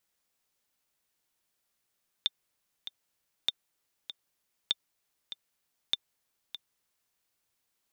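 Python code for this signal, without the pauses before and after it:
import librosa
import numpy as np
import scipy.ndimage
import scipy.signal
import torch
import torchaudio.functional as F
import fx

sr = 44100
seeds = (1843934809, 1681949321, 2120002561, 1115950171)

y = fx.click_track(sr, bpm=98, beats=2, bars=4, hz=3580.0, accent_db=12.5, level_db=-13.0)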